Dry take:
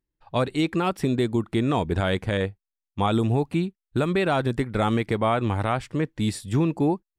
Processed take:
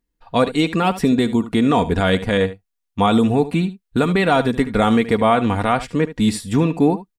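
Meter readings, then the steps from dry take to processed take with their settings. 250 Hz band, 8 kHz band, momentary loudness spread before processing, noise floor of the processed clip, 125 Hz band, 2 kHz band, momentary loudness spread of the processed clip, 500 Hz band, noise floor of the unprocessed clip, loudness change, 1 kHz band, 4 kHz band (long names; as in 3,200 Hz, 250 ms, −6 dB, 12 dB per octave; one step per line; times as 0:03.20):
+7.5 dB, +7.0 dB, 5 LU, −77 dBFS, +3.0 dB, +7.5 dB, 5 LU, +6.5 dB, below −85 dBFS, +6.5 dB, +7.5 dB, +7.5 dB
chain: comb filter 4.2 ms, depth 52%
single-tap delay 74 ms −15 dB
level +6 dB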